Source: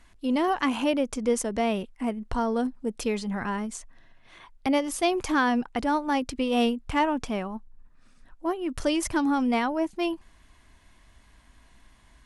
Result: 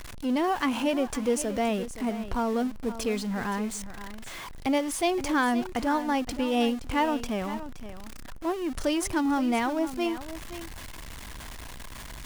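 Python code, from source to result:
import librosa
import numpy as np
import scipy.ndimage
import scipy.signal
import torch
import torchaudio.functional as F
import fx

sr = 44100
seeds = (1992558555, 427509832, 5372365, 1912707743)

y = x + 0.5 * 10.0 ** (-33.0 / 20.0) * np.sign(x)
y = y + 10.0 ** (-13.0 / 20.0) * np.pad(y, (int(521 * sr / 1000.0), 0))[:len(y)]
y = F.gain(torch.from_numpy(y), -2.5).numpy()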